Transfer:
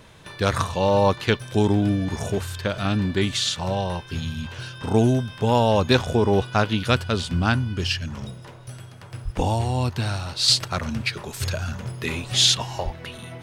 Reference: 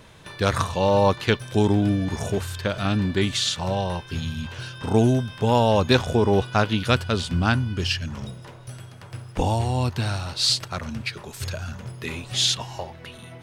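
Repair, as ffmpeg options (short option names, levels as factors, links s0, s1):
-filter_complex "[0:a]asplit=3[s0][s1][s2];[s0]afade=t=out:st=9.24:d=0.02[s3];[s1]highpass=f=140:w=0.5412,highpass=f=140:w=1.3066,afade=t=in:st=9.24:d=0.02,afade=t=out:st=9.36:d=0.02[s4];[s2]afade=t=in:st=9.36:d=0.02[s5];[s3][s4][s5]amix=inputs=3:normalize=0,asplit=3[s6][s7][s8];[s6]afade=t=out:st=12.84:d=0.02[s9];[s7]highpass=f=140:w=0.5412,highpass=f=140:w=1.3066,afade=t=in:st=12.84:d=0.02,afade=t=out:st=12.96:d=0.02[s10];[s8]afade=t=in:st=12.96:d=0.02[s11];[s9][s10][s11]amix=inputs=3:normalize=0,asetnsamples=n=441:p=0,asendcmd='10.48 volume volume -4dB',volume=1"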